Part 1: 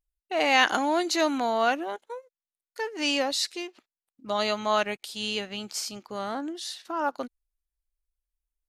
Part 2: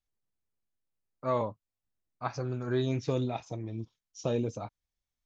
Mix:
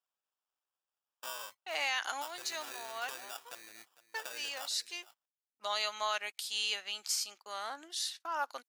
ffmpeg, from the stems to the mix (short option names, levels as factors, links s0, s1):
-filter_complex "[0:a]agate=range=0.0355:threshold=0.00631:ratio=16:detection=peak,adelay=1350,volume=0.631[s0];[1:a]acrossover=split=110|900[s1][s2][s3];[s1]acompressor=threshold=0.002:ratio=4[s4];[s2]acompressor=threshold=0.00562:ratio=4[s5];[s3]acompressor=threshold=0.00447:ratio=4[s6];[s4][s5][s6]amix=inputs=3:normalize=0,acrusher=samples=21:mix=1:aa=0.000001,volume=1.26,asplit=3[s7][s8][s9];[s8]volume=0.133[s10];[s9]apad=whole_len=442658[s11];[s0][s11]sidechaincompress=threshold=0.00398:ratio=8:attack=45:release=544[s12];[s10]aecho=0:1:454:1[s13];[s12][s7][s13]amix=inputs=3:normalize=0,highpass=920,highshelf=f=4000:g=7,alimiter=limit=0.0841:level=0:latency=1:release=183"